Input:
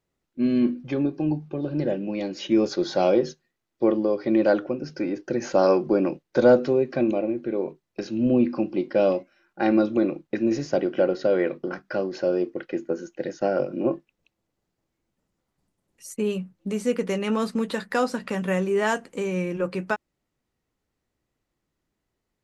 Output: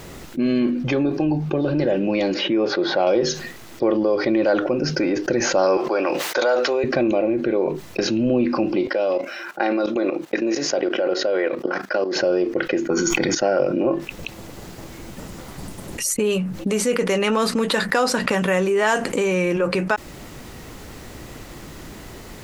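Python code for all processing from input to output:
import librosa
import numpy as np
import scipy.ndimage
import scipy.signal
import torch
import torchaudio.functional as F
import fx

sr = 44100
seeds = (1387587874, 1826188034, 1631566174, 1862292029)

y = fx.chain(x, sr, fx.highpass(hz=240.0, slope=6),
    fx.air_absorb(metres=340.0), at=(2.34, 3.07))
y = fx.chain(y, sr, fx.highpass(hz=740.0, slope=12),
    fx.sustainer(db_per_s=120.0), at=(5.77, 6.84))
y = fx.chain(y, sr, fx.highpass(hz=380.0, slope=12),
    fx.level_steps(step_db=15), at=(8.87, 12.16))
y = fx.chain(y, sr, fx.comb(ms=0.9, depth=0.74),
    fx.sustainer(db_per_s=25.0), at=(12.9, 13.35))
y = fx.dynamic_eq(y, sr, hz=190.0, q=0.74, threshold_db=-36.0, ratio=4.0, max_db=-8)
y = fx.env_flatten(y, sr, amount_pct=70)
y = y * librosa.db_to_amplitude(2.0)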